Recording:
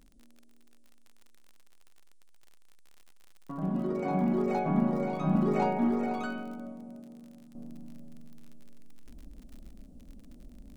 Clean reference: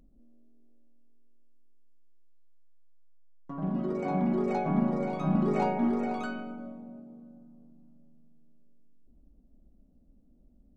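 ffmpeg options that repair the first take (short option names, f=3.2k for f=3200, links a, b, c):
-af "adeclick=t=4,agate=range=-21dB:threshold=-45dB,asetnsamples=n=441:p=0,asendcmd='7.55 volume volume -11.5dB',volume=0dB"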